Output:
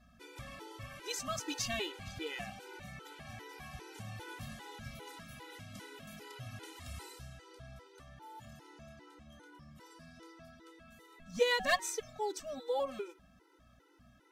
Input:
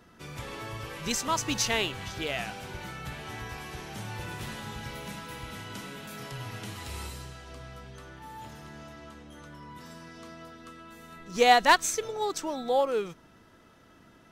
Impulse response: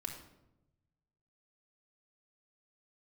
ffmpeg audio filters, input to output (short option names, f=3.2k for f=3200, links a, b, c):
-af "bandreject=f=187.9:t=h:w=4,bandreject=f=375.8:t=h:w=4,bandreject=f=563.7:t=h:w=4,bandreject=f=751.6:t=h:w=4,bandreject=f=939.5:t=h:w=4,bandreject=f=1.1274k:t=h:w=4,bandreject=f=1.3153k:t=h:w=4,bandreject=f=1.5032k:t=h:w=4,bandreject=f=1.6911k:t=h:w=4,bandreject=f=1.879k:t=h:w=4,bandreject=f=2.0669k:t=h:w=4,bandreject=f=2.2548k:t=h:w=4,bandreject=f=2.4427k:t=h:w=4,bandreject=f=2.6306k:t=h:w=4,bandreject=f=2.8185k:t=h:w=4,bandreject=f=3.0064k:t=h:w=4,bandreject=f=3.1943k:t=h:w=4,bandreject=f=3.3822k:t=h:w=4,aeval=exprs='val(0)+0.001*(sin(2*PI*60*n/s)+sin(2*PI*2*60*n/s)/2+sin(2*PI*3*60*n/s)/3+sin(2*PI*4*60*n/s)/4+sin(2*PI*5*60*n/s)/5)':c=same,afftfilt=real='re*gt(sin(2*PI*2.5*pts/sr)*(1-2*mod(floor(b*sr/1024/260),2)),0)':imag='im*gt(sin(2*PI*2.5*pts/sr)*(1-2*mod(floor(b*sr/1024/260),2)),0)':win_size=1024:overlap=0.75,volume=-5.5dB"